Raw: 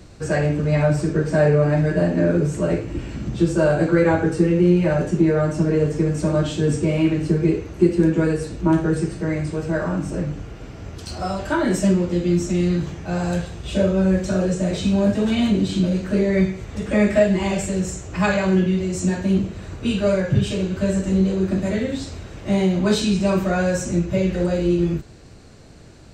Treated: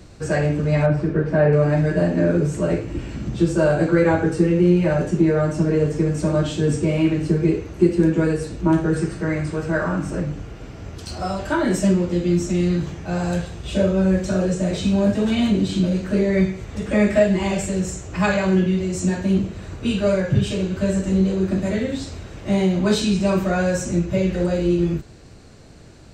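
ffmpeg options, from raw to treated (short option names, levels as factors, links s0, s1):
-filter_complex "[0:a]asettb=1/sr,asplit=3[s0][s1][s2];[s0]atrim=end=0.864[s3];[s1]atrim=start=0.86:end=1.53,asetpts=PTS-STARTPTS,afade=t=in:d=0.004:c=qsin,afade=t=out:st=0.666:d=0.004:c=qsin,lowpass=2600[s4];[s2]atrim=start=1.526[s5];[s3][s4]acrossfade=d=0.004:c1=hsin:c2=qsin[s6];[s6][s5]acrossfade=d=0.004:c1=qsin:c2=hsin,asettb=1/sr,asplit=3[s7][s8][s9];[s7]atrim=end=8.944[s10];[s8]atrim=start=8.94:end=10.2,asetpts=PTS-STARTPTS,afade=t=in:d=0.004:c=qsin,afade=t=out:st=1.256:d=0.004:c=qsin,equalizer=f=1400:w=1.4:g=5.5[s11];[s9]atrim=start=10.196[s12];[s10][s11]acrossfade=d=0.004:c1=hsin:c2=qsin[s13];[s13][s12]acrossfade=d=0.004:c1=qsin:c2=hsin"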